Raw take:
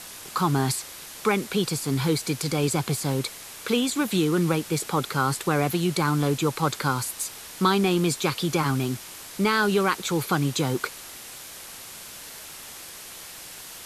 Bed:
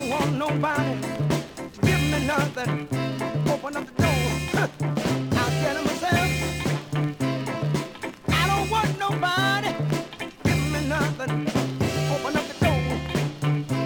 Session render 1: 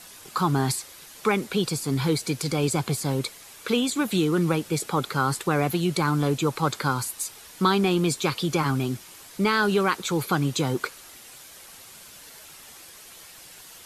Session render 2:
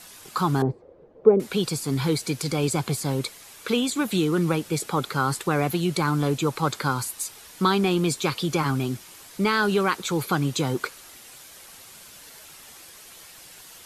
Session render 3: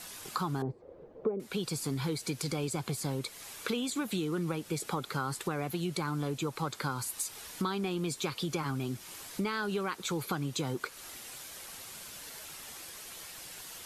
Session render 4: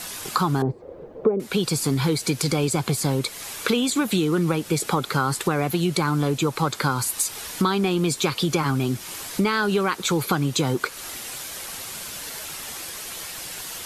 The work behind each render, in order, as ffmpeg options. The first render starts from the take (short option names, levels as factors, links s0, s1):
-af "afftdn=nr=7:nf=-42"
-filter_complex "[0:a]asettb=1/sr,asplit=3[s0][s1][s2];[s0]atrim=end=0.624[s3];[s1]atrim=start=0.62:end=1.4,asetpts=PTS-STARTPTS,afade=t=in:d=0.004:c=qsin,afade=t=out:st=0.776:d=0.004:c=qsin,lowpass=f=490:t=q:w=4.3[s4];[s2]atrim=start=1.396[s5];[s3][s4]acrossfade=d=0.004:c1=hsin:c2=qsin[s6];[s6][s5]acrossfade=d=0.004:c1=qsin:c2=hsin"
-af "acompressor=threshold=0.0251:ratio=4"
-af "volume=3.76"